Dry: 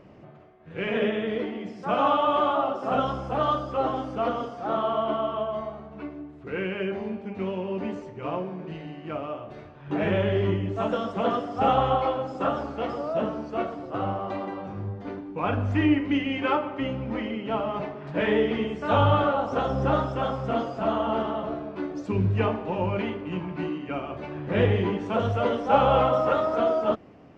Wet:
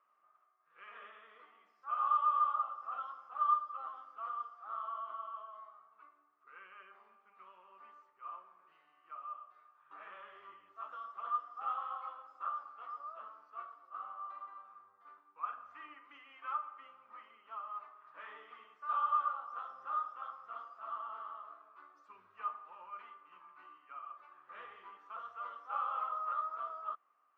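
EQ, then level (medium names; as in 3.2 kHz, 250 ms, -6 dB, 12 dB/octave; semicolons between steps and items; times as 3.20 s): band-pass filter 1.2 kHz, Q 14; tilt EQ +4.5 dB/octave; -3.5 dB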